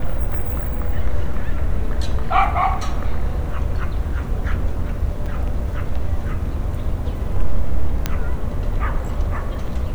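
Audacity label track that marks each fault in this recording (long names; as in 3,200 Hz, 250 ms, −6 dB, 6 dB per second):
5.260000	5.260000	drop-out 4.8 ms
8.060000	8.060000	click −5 dBFS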